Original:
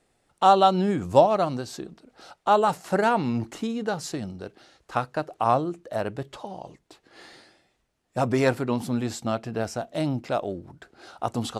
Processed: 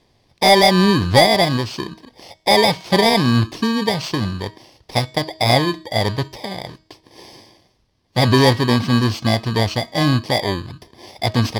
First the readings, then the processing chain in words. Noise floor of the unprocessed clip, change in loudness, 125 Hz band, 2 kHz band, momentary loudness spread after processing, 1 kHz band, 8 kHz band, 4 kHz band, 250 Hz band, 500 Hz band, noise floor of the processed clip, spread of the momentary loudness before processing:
-72 dBFS, +8.0 dB, +13.0 dB, +13.5 dB, 15 LU, +4.0 dB, +10.5 dB, +18.5 dB, +9.0 dB, +6.0 dB, -62 dBFS, 18 LU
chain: bit-reversed sample order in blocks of 32 samples; fifteen-band graphic EQ 100 Hz +8 dB, 1 kHz +4 dB, 4 kHz +11 dB, 10 kHz -7 dB; in parallel at -9.5 dB: sine folder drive 12 dB, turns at 0.5 dBFS; on the sum: distance through air 58 m; de-hum 317.1 Hz, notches 27

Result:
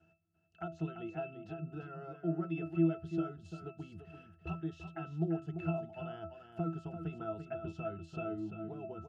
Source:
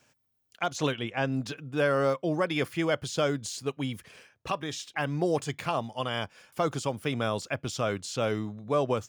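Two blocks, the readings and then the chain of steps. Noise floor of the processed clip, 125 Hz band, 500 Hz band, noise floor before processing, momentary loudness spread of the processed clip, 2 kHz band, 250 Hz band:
-70 dBFS, -5.5 dB, -12.5 dB, -73 dBFS, 11 LU, -18.0 dB, -4.5 dB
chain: compression 6:1, threshold -37 dBFS, peak gain reduction 14.5 dB; pitch-class resonator E, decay 0.25 s; delay 342 ms -8.5 dB; trim +15 dB

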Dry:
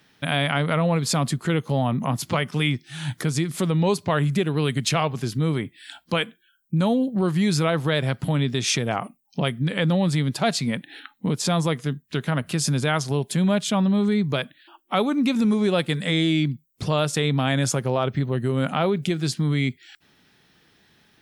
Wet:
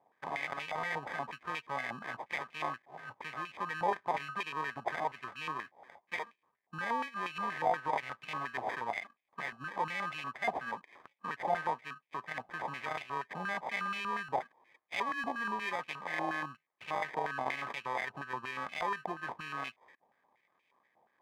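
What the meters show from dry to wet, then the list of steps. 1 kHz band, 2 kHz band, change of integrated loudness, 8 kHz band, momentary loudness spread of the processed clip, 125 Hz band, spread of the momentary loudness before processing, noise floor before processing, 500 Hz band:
-5.0 dB, -7.0 dB, -14.0 dB, -27.0 dB, 8 LU, -30.5 dB, 7 LU, -62 dBFS, -16.0 dB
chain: vibrato 0.85 Hz 5.9 cents; sample-rate reducer 1.4 kHz, jitter 0%; step-sequenced band-pass 8.4 Hz 800–2500 Hz

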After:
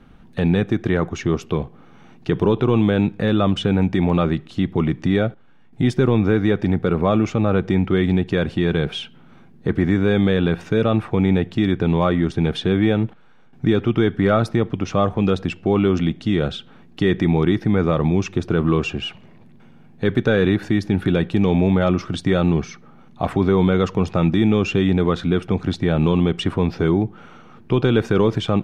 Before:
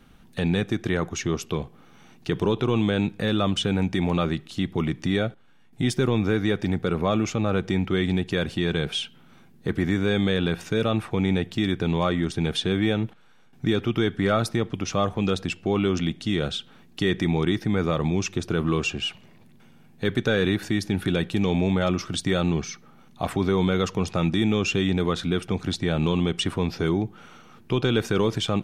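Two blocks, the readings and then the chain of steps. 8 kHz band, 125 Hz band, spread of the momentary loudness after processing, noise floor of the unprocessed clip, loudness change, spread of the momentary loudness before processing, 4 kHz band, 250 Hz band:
no reading, +6.0 dB, 6 LU, -52 dBFS, +5.5 dB, 6 LU, -1.5 dB, +6.0 dB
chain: low-pass 1.6 kHz 6 dB/octave; trim +6 dB

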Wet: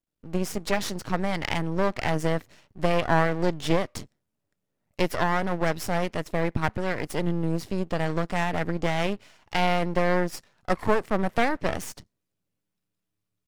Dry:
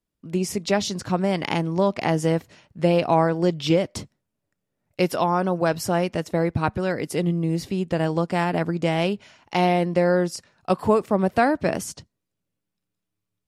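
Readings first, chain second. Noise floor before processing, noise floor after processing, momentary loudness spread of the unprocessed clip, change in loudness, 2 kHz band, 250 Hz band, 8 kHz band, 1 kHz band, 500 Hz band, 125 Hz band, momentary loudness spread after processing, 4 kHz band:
-82 dBFS, -82 dBFS, 7 LU, -4.0 dB, +0.5 dB, -5.0 dB, -4.5 dB, -3.0 dB, -5.0 dB, -4.5 dB, 7 LU, -2.5 dB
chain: half-wave rectifier; dynamic bell 1.9 kHz, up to +5 dB, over -45 dBFS, Q 2.7

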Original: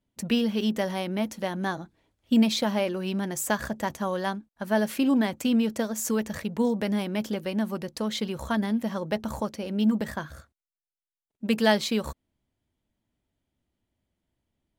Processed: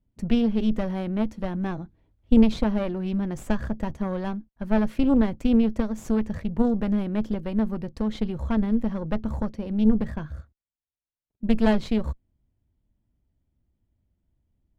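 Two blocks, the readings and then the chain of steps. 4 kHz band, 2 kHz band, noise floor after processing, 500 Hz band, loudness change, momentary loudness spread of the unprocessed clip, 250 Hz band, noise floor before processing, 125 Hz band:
-9.0 dB, -6.0 dB, under -85 dBFS, -0.5 dB, +2.0 dB, 9 LU, +3.5 dB, under -85 dBFS, +4.5 dB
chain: Chebyshev shaper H 4 -12 dB, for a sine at -9 dBFS; RIAA curve playback; trim -4.5 dB

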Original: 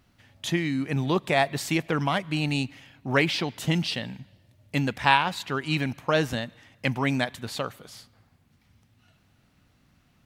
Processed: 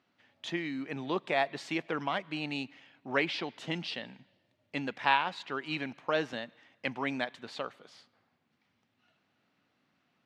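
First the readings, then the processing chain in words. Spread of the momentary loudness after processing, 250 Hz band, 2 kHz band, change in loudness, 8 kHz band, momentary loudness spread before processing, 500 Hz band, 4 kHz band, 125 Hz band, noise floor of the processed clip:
11 LU, -9.5 dB, -6.0 dB, -7.5 dB, -16.0 dB, 12 LU, -6.5 dB, -7.5 dB, -17.0 dB, -76 dBFS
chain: band-pass 270–4200 Hz; trim -6 dB

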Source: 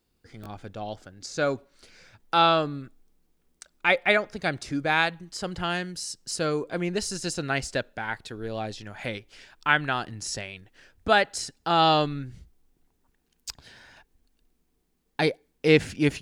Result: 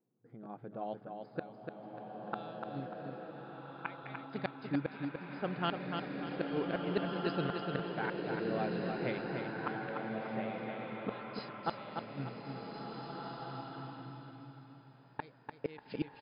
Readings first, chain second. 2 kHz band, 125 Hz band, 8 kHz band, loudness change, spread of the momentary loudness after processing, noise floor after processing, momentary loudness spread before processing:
-16.5 dB, -9.0 dB, under -40 dB, -13.5 dB, 13 LU, -60 dBFS, 18 LU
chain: FFT band-pass 110–5100 Hz; level-controlled noise filter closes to 680 Hz, open at -19.5 dBFS; inverted gate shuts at -18 dBFS, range -30 dB; feedback delay 295 ms, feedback 36%, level -5.5 dB; swelling reverb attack 1800 ms, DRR 0.5 dB; trim -4.5 dB

